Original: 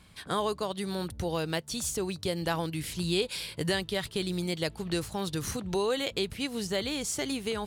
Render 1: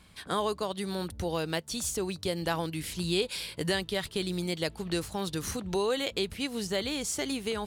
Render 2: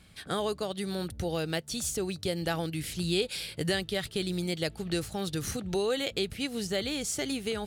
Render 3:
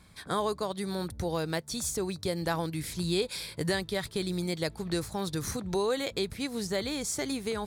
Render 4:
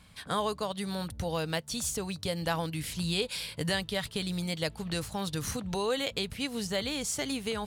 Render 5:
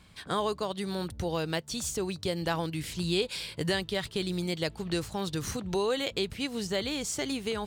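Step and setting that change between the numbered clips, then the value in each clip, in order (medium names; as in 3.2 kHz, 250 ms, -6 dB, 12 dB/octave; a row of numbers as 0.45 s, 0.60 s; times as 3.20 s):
peaking EQ, frequency: 130 Hz, 1 kHz, 2.9 kHz, 360 Hz, 11 kHz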